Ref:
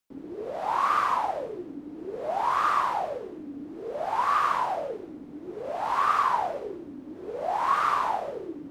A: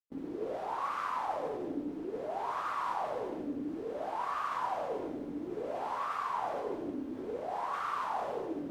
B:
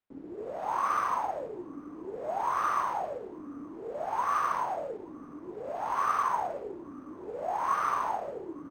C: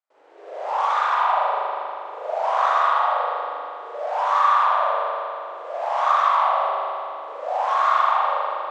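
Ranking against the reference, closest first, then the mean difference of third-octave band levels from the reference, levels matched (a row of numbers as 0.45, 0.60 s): B, A, C; 2.0, 5.0, 12.0 dB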